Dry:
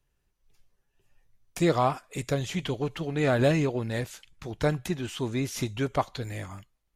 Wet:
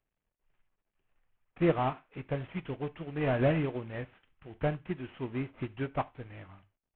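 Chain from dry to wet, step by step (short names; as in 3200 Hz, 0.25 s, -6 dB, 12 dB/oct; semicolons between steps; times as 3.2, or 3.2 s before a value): CVSD 16 kbps; non-linear reverb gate 0.12 s falling, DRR 10.5 dB; upward expander 1.5:1, over -39 dBFS; gain -2 dB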